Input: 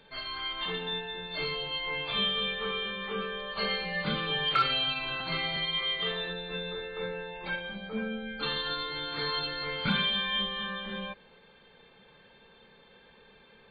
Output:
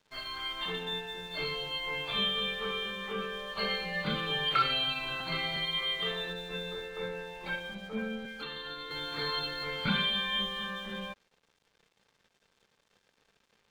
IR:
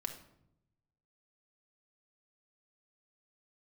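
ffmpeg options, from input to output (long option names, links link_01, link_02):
-filter_complex "[0:a]aeval=exprs='sgn(val(0))*max(abs(val(0))-0.00188,0)':channel_layout=same,asettb=1/sr,asplit=3[link_01][link_02][link_03];[link_01]atrim=end=8.254[link_04];[link_02]atrim=start=8.25:end=8.91,asetpts=PTS-STARTPTS,afade=type=in:duration=0.004:curve=qsin,afade=type=out:start_time=0.656:duration=0.004:curve=qsin,acrossover=split=200|620|1400|2900[link_05][link_06][link_07][link_08][link_09];[link_05]acompressor=threshold=-57dB:ratio=4[link_10];[link_06]acompressor=threshold=-46dB:ratio=4[link_11];[link_07]acompressor=threshold=-52dB:ratio=4[link_12];[link_08]acompressor=threshold=-43dB:ratio=4[link_13];[link_09]acompressor=threshold=-48dB:ratio=4[link_14];[link_10][link_11][link_12][link_13][link_14]amix=inputs=5:normalize=0[link_15];[link_03]atrim=start=8.906[link_16];[link_04][link_15]acrossfade=duration=0.004:curve1=hsin:curve2=qsin[link_17];[link_17][link_16]acrossfade=duration=0.004:curve1=qsin:curve2=hsin,volume=-1dB"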